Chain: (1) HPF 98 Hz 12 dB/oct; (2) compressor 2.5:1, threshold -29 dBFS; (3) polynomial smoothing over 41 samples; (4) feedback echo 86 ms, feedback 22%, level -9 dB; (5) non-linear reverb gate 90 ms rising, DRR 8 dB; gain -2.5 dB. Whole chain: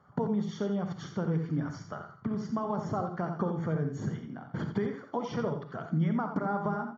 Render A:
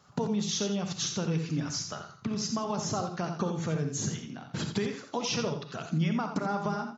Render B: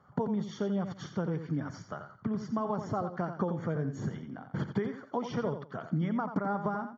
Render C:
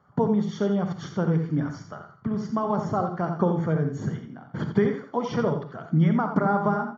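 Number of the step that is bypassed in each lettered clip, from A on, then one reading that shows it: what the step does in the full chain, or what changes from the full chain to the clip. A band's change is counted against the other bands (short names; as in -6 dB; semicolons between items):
3, 4 kHz band +16.5 dB; 5, echo-to-direct -5.0 dB to -9.0 dB; 2, mean gain reduction 5.0 dB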